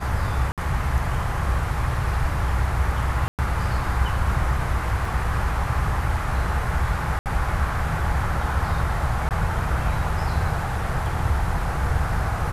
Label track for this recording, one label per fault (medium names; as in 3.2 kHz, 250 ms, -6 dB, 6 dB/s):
0.520000	0.580000	dropout 57 ms
3.280000	3.390000	dropout 108 ms
5.050000	5.050000	dropout 3.2 ms
7.190000	7.260000	dropout 68 ms
9.290000	9.310000	dropout 18 ms